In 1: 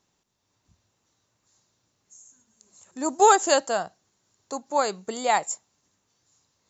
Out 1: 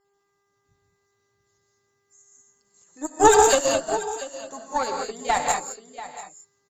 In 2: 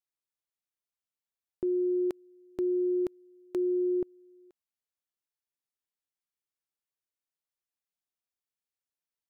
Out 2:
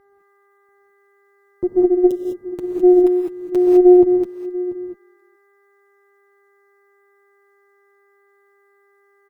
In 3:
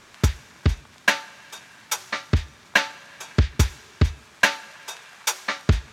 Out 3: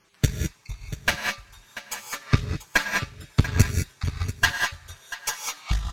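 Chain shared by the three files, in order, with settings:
random holes in the spectrogram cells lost 26%; treble shelf 7.3 kHz +8 dB; flange 0.35 Hz, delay 5.9 ms, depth 3.1 ms, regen -6%; mains buzz 400 Hz, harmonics 5, -67 dBFS -6 dB/octave; peaking EQ 60 Hz +6.5 dB 2.7 oct; on a send: delay 688 ms -9.5 dB; on the sum: gated-style reverb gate 230 ms rising, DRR -0.5 dB; valve stage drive 10 dB, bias 0.75; upward expansion 1.5:1, over -40 dBFS; peak normalisation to -2 dBFS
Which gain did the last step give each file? +9.5 dB, +20.0 dB, +5.5 dB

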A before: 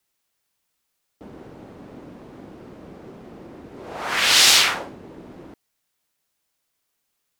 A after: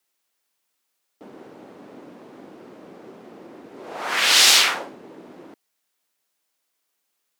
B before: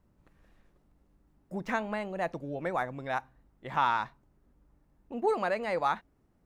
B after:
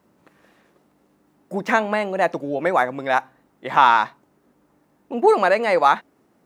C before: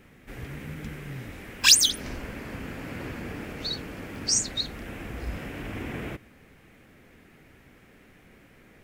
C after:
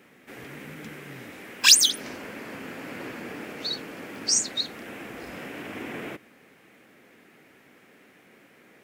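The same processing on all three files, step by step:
high-pass 240 Hz 12 dB/octave; peak normalisation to -2 dBFS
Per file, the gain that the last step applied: 0.0 dB, +13.0 dB, +1.5 dB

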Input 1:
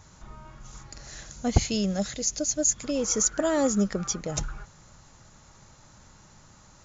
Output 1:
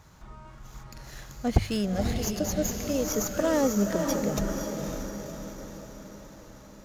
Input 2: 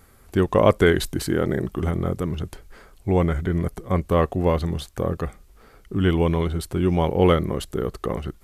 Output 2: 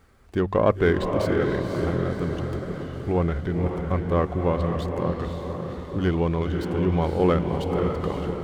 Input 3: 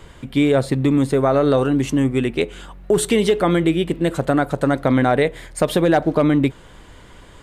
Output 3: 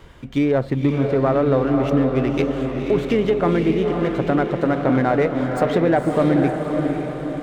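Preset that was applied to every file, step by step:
de-hum 97.33 Hz, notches 2; low-pass that closes with the level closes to 2.3 kHz, closed at -14 dBFS; treble shelf 7.6 kHz -8 dB; on a send: echo that smears into a reverb 528 ms, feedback 54%, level -4.5 dB; on the sum: sliding maximum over 3 samples; peak normalisation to -6 dBFS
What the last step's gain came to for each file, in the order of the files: -0.5 dB, -3.0 dB, -2.0 dB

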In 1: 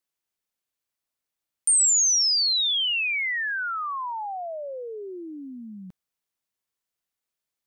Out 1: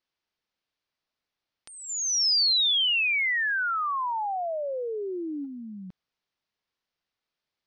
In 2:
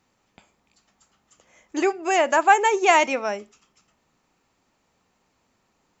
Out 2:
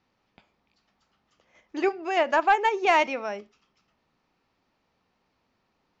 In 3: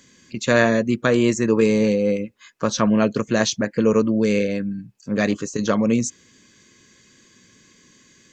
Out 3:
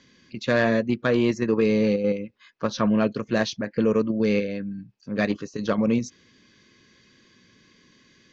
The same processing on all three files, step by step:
steep low-pass 5.4 kHz 36 dB/octave; in parallel at 0 dB: level held to a coarse grid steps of 19 dB; on the sum: saturation -1 dBFS; normalise loudness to -24 LUFS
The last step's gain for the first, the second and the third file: -1.0 dB, -7.5 dB, -7.5 dB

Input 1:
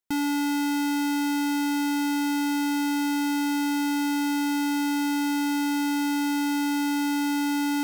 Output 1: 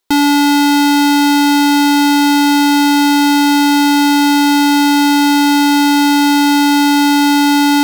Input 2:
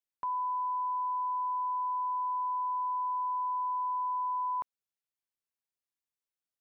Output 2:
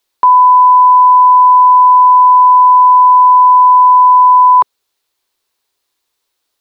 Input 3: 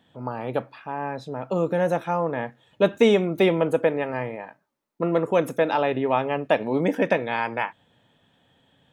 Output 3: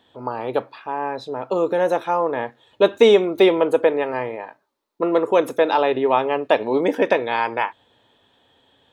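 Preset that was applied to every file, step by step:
fifteen-band graphic EQ 160 Hz -12 dB, 400 Hz +6 dB, 1 kHz +5 dB, 4 kHz +7 dB; peak normalisation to -2 dBFS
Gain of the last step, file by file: +14.0 dB, +21.5 dB, +1.0 dB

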